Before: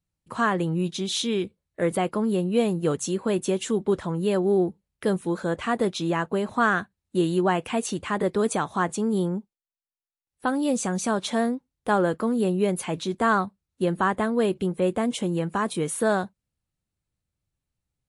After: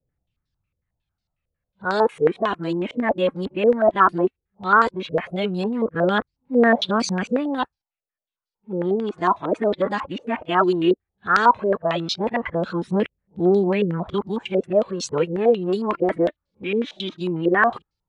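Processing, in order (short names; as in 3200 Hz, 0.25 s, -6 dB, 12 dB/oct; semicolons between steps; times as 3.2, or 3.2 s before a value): whole clip reversed; phaser 0.15 Hz, delay 3.7 ms, feedback 45%; stepped low-pass 11 Hz 500–4700 Hz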